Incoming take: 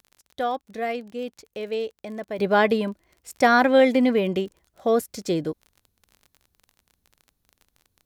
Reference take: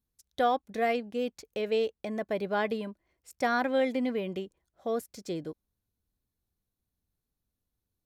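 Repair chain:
click removal
level correction −10.5 dB, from 0:02.39

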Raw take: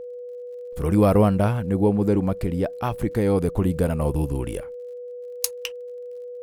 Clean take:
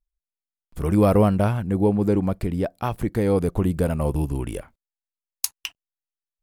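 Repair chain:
click removal
notch filter 490 Hz, Q 30
level 0 dB, from 0:05.82 −4.5 dB

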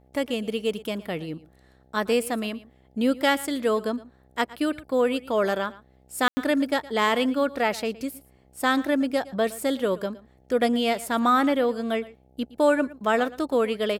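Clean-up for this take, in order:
hum removal 64.5 Hz, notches 13
ambience match 0:06.28–0:06.37
echo removal 115 ms −19 dB

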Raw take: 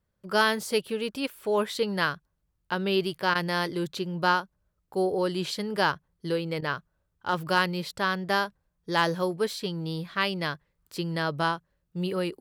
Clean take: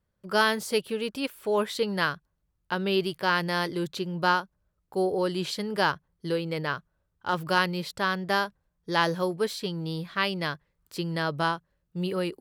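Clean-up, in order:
clipped peaks rebuilt −10.5 dBFS
repair the gap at 0:03.34/0:06.61, 11 ms

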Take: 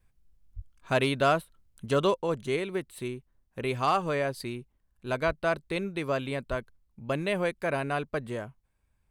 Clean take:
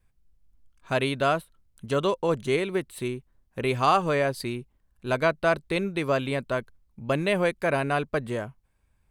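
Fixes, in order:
clipped peaks rebuilt −15 dBFS
0:00.55–0:00.67: high-pass filter 140 Hz 24 dB per octave
0:02.16: level correction +4.5 dB
0:05.26–0:05.38: high-pass filter 140 Hz 24 dB per octave
0:06.49–0:06.61: high-pass filter 140 Hz 24 dB per octave

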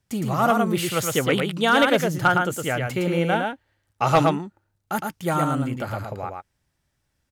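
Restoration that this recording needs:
clipped peaks rebuilt −9.5 dBFS
echo removal 112 ms −4 dB

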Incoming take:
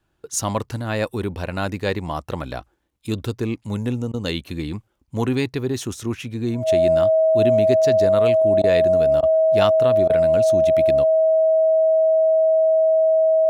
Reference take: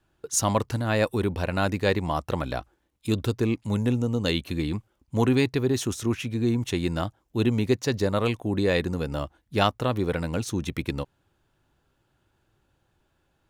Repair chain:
notch filter 640 Hz, Q 30
repair the gap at 0:04.12/0:08.62/0:09.21/0:10.08, 16 ms

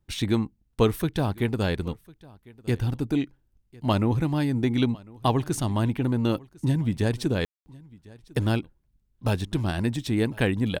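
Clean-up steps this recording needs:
ambience match 0:07.45–0:07.66
echo removal 1,051 ms −23.5 dB

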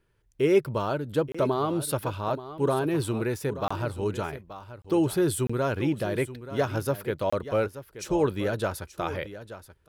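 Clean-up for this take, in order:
repair the gap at 0:01.32/0:03.68/0:04.82/0:05.47/0:07.30, 25 ms
echo removal 880 ms −13.5 dB

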